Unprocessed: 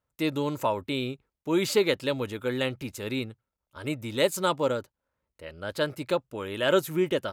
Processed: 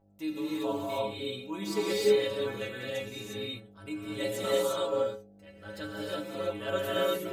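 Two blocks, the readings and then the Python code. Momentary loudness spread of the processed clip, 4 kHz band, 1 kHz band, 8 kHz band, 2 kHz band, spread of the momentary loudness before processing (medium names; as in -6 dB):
13 LU, -3.5 dB, -5.0 dB, -4.0 dB, -5.5 dB, 12 LU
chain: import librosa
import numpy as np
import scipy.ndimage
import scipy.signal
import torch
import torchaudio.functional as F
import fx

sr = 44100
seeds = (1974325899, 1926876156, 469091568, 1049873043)

y = fx.dmg_buzz(x, sr, base_hz=50.0, harmonics=16, level_db=-55.0, tilt_db=-2, odd_only=False)
y = fx.stiff_resonator(y, sr, f0_hz=99.0, decay_s=0.41, stiffness=0.008)
y = fx.rev_gated(y, sr, seeds[0], gate_ms=380, shape='rising', drr_db=-6.0)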